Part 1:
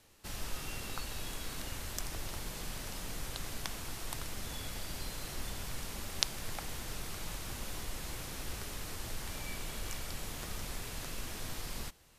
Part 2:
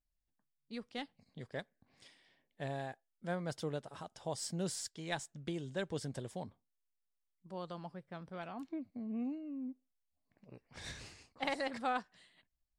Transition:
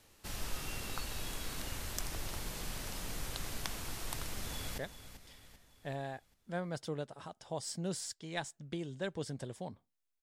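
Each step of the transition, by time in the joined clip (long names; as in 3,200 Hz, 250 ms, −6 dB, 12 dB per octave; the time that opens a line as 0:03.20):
part 1
0:04.36–0:04.78: delay throw 390 ms, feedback 50%, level −11.5 dB
0:04.78: continue with part 2 from 0:01.53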